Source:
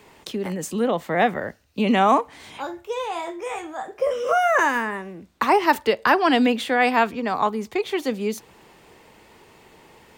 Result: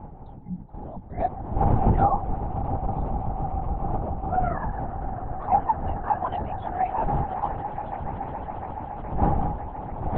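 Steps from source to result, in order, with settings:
spectral dynamics exaggerated over time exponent 2
wind on the microphone 420 Hz −24 dBFS
pair of resonant band-passes 370 Hz, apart 2.2 octaves
on a send: echo that builds up and dies away 140 ms, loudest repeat 8, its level −16 dB
on the sum: linear-prediction vocoder at 8 kHz whisper
level +4.5 dB

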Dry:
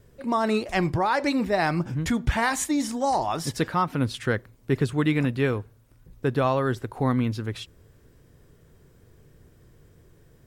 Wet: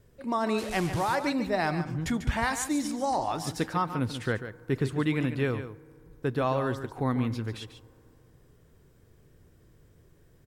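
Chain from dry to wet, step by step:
0:00.58–0:01.15: linear delta modulator 64 kbit/s, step −28 dBFS
single-tap delay 144 ms −10.5 dB
on a send at −21 dB: convolution reverb RT60 2.9 s, pre-delay 3 ms
on the sum: level −4.5 dB

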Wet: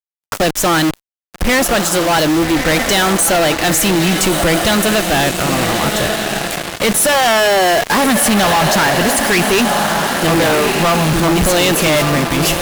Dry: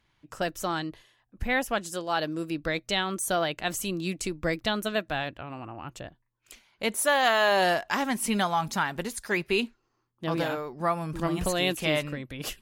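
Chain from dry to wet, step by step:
bit reduction 8 bits
feedback delay with all-pass diffusion 1,233 ms, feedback 49%, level −11 dB
fuzz pedal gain 42 dB, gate −41 dBFS
level +2.5 dB

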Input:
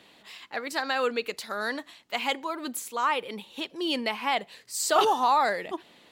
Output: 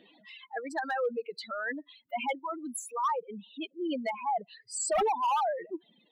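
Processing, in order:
expanding power law on the bin magnitudes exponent 3.1
hard clipping −21 dBFS, distortion −16 dB
reverb reduction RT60 1.9 s
level −2.5 dB

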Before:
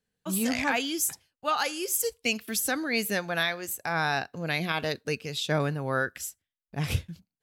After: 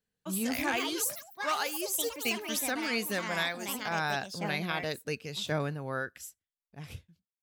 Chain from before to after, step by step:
fade-out on the ending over 1.92 s
delay with pitch and tempo change per echo 297 ms, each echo +5 semitones, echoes 3, each echo −6 dB
level −4.5 dB

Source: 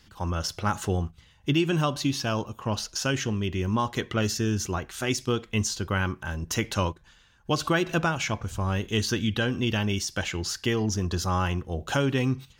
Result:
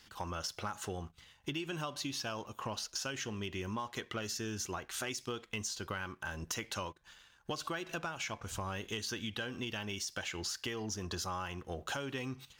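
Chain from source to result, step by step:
low-shelf EQ 310 Hz −11.5 dB
downward compressor 6 to 1, threshold −38 dBFS, peak gain reduction 16 dB
leveller curve on the samples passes 1
level −2 dB

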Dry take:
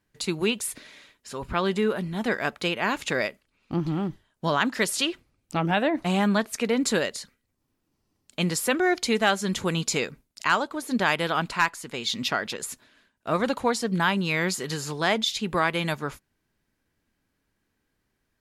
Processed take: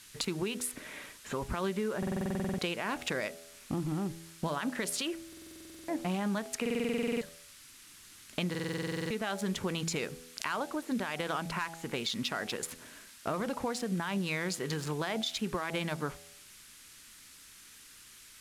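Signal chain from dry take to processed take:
adaptive Wiener filter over 9 samples
hum removal 82.43 Hz, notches 10
brickwall limiter −19 dBFS, peak gain reduction 11 dB
downward compressor 3 to 1, threshold −44 dBFS, peak gain reduction 15.5 dB
noise in a band 1,200–12,000 Hz −63 dBFS
buffer that repeats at 0:01.98/0:05.28/0:06.61/0:08.50, samples 2,048, times 12
level +8.5 dB

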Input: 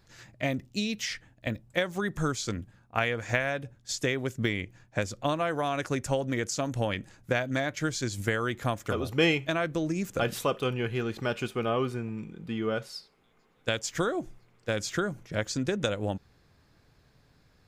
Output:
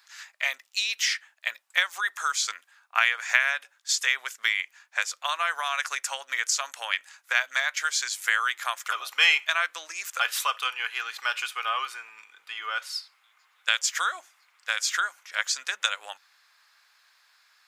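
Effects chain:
high-pass filter 1,100 Hz 24 dB per octave
level +8.5 dB

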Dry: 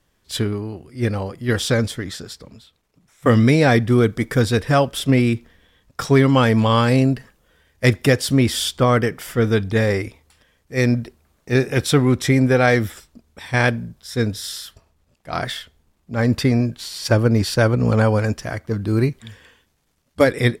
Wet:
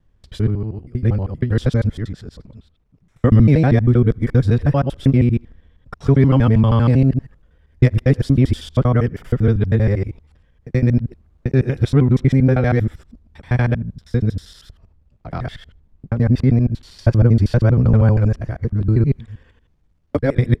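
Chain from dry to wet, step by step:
reversed piece by piece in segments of 79 ms
RIAA equalisation playback
level −6 dB

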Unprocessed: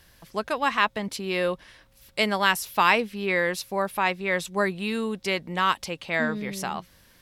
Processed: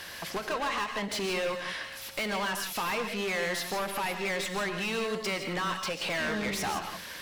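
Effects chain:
downward compressor, threshold −33 dBFS, peak gain reduction 17.5 dB
mid-hump overdrive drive 31 dB, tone 4,800 Hz, clips at −18 dBFS
reverb whose tail is shaped and stops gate 190 ms rising, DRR 5.5 dB
every ending faded ahead of time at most 180 dB per second
level −6 dB

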